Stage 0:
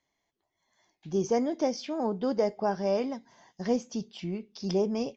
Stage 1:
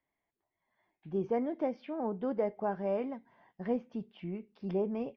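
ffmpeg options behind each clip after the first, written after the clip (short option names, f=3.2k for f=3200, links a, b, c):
-af "lowpass=f=2.6k:w=0.5412,lowpass=f=2.6k:w=1.3066,volume=-5dB"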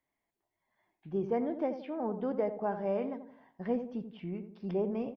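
-filter_complex "[0:a]asplit=2[a][b];[b]adelay=86,lowpass=f=1k:p=1,volume=-9dB,asplit=2[c][d];[d]adelay=86,lowpass=f=1k:p=1,volume=0.45,asplit=2[e][f];[f]adelay=86,lowpass=f=1k:p=1,volume=0.45,asplit=2[g][h];[h]adelay=86,lowpass=f=1k:p=1,volume=0.45,asplit=2[i][j];[j]adelay=86,lowpass=f=1k:p=1,volume=0.45[k];[a][c][e][g][i][k]amix=inputs=6:normalize=0"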